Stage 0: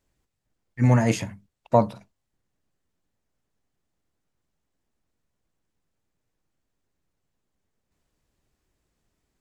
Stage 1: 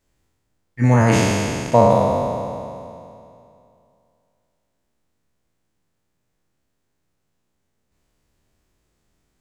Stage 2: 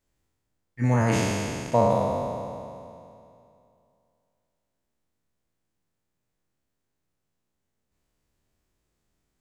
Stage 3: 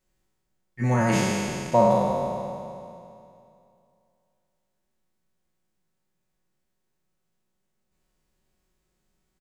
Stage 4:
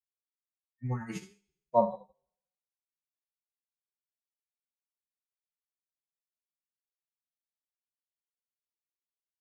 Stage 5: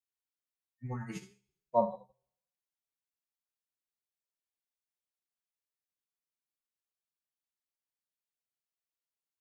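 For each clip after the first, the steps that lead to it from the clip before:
spectral sustain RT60 2.57 s; trim +2.5 dB
treble shelf 11 kHz +3 dB; trim -7.5 dB
comb 5.4 ms
expander on every frequency bin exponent 3; upward expansion 2.5:1, over -42 dBFS
de-hum 127 Hz, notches 2; trim -3 dB

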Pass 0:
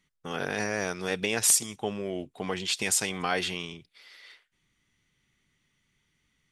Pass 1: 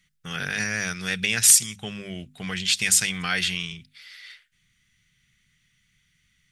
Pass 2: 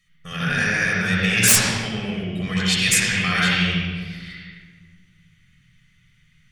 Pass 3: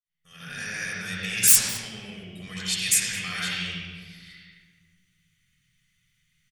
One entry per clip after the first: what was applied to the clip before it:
high-order bell 530 Hz -15 dB 2.4 oct; hum notches 50/100/150/200/250 Hz; trim +7 dB
integer overflow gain 5.5 dB; reverberation RT60 1.6 s, pre-delay 62 ms, DRR -6 dB; trim -2.5 dB
fade-in on the opening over 0.82 s; pre-emphasis filter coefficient 0.8; delay 214 ms -22 dB; trim -1 dB

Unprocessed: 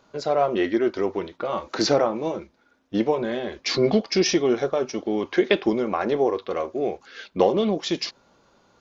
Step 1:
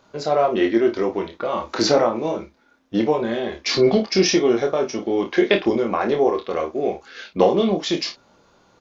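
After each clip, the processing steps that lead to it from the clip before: early reflections 26 ms -5 dB, 54 ms -12.5 dB; trim +2 dB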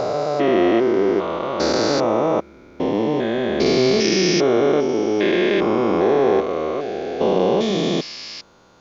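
spectrogram pixelated in time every 400 ms; trim +6 dB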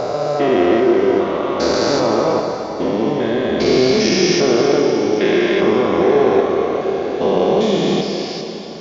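plate-style reverb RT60 4.2 s, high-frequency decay 0.85×, DRR 2.5 dB; trim +1 dB

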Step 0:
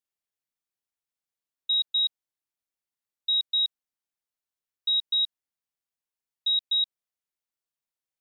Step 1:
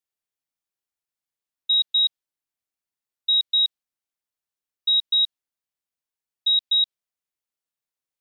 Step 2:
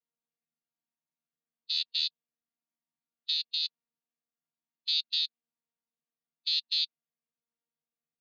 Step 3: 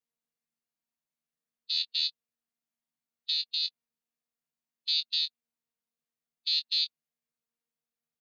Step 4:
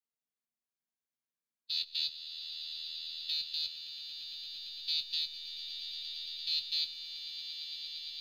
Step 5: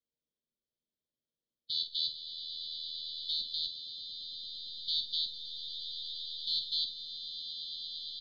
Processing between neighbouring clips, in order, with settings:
dynamic bell 3.6 kHz, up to +5 dB, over -36 dBFS, Q 1.1
vocoder on a held chord bare fifth, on D#3; harmonic-percussive split percussive -7 dB; peak limiter -11.5 dBFS, peak gain reduction 5.5 dB; trim -6.5 dB
doubling 21 ms -9.5 dB
in parallel at -10 dB: hysteresis with a dead band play -30.5 dBFS; on the sum: echo with a slow build-up 114 ms, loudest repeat 8, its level -11 dB; trim -7 dB
brick-wall FIR band-stop 650–3000 Hz; distance through air 220 m; doubling 49 ms -9.5 dB; trim +7 dB

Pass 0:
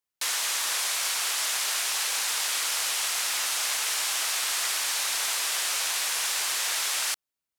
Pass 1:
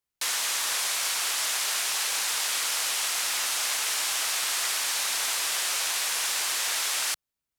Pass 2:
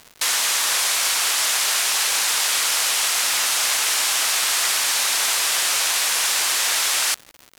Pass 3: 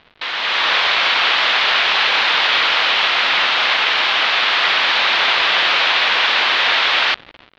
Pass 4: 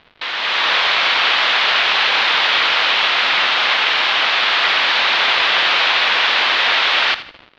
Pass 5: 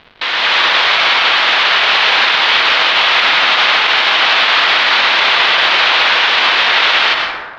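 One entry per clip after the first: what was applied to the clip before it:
bass shelf 150 Hz +10.5 dB
crackle 240 per s -38 dBFS; trim +7.5 dB
steep low-pass 3.8 kHz 36 dB/octave; level rider gain up to 11 dB
thinning echo 80 ms, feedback 33%, level -14 dB
on a send at -5.5 dB: reverberation RT60 1.3 s, pre-delay 88 ms; on the sum: loudness maximiser +7.5 dB; trim -1 dB

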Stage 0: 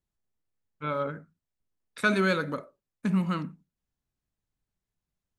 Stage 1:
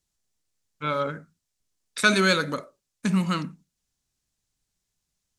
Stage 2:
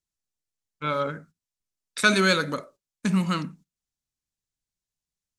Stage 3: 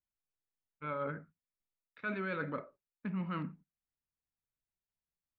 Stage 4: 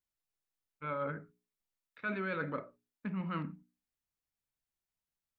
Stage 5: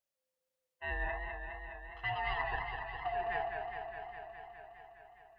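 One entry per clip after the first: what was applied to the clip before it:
peaking EQ 6.5 kHz +13.5 dB 2.1 oct; trim +2.5 dB
gate -50 dBFS, range -11 dB
reverse; compression 6:1, threshold -28 dBFS, peak gain reduction 14 dB; reverse; inverse Chebyshev low-pass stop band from 9.3 kHz, stop band 70 dB; trim -6 dB
hum notches 60/120/180/240/300/360/420 Hz; trim +1 dB
split-band scrambler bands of 500 Hz; modulated delay 206 ms, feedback 76%, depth 96 cents, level -6 dB

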